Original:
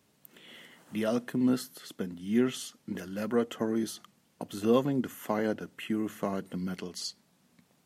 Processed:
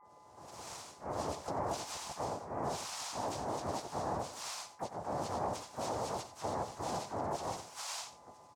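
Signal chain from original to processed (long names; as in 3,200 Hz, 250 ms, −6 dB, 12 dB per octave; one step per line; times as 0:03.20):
every frequency bin delayed by itself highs late, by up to 330 ms
cochlear-implant simulation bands 2
dynamic equaliser 4,500 Hz, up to +3 dB, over −49 dBFS, Q 0.87
reversed playback
downward compressor 20 to 1, threshold −37 dBFS, peak gain reduction 19.5 dB
reversed playback
brickwall limiter −35.5 dBFS, peak gain reduction 9 dB
steady tone 1,100 Hz −70 dBFS
graphic EQ with 10 bands 250 Hz −5 dB, 500 Hz −4 dB, 1,000 Hz +8 dB, 2,000 Hz −10 dB, 4,000 Hz −8 dB
pitch-shifted copies added −3 semitones 0 dB, +3 semitones −6 dB, +12 semitones −17 dB
on a send: single-tap delay 83 ms −13.5 dB
on the sum: wrong playback speed 48 kHz file played as 44.1 kHz
level +4.5 dB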